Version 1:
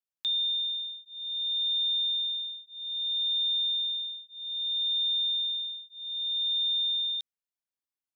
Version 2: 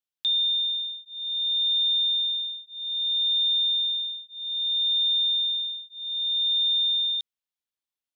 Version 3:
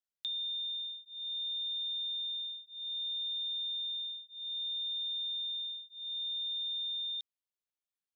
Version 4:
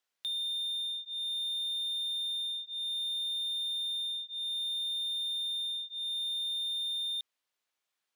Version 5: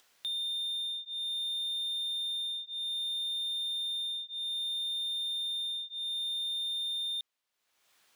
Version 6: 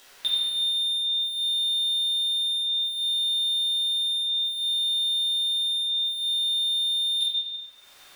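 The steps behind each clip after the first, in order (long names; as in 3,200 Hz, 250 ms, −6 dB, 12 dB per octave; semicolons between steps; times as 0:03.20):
parametric band 3,400 Hz +6.5 dB 0.77 octaves; level −1.5 dB
downward compressor, threshold −28 dBFS, peak gain reduction 6 dB; level −7.5 dB
mid-hump overdrive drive 20 dB, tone 3,600 Hz, clips at −27 dBFS
upward compression, threshold −51 dBFS
convolution reverb RT60 2.5 s, pre-delay 5 ms, DRR −10.5 dB; level +8 dB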